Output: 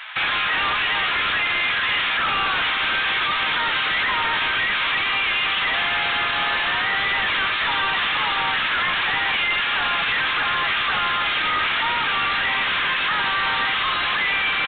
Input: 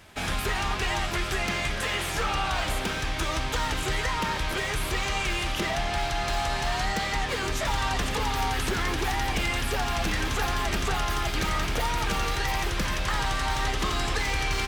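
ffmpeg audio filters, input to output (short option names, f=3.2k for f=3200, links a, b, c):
-af "highpass=f=1.1k:w=0.5412,highpass=f=1.1k:w=1.3066,alimiter=level_in=4dB:limit=-24dB:level=0:latency=1:release=41,volume=-4dB,aresample=11025,aeval=exprs='0.158*sin(PI/2*7.94*val(0)/0.158)':c=same,aresample=44100,aresample=8000,aresample=44100,volume=-1.5dB"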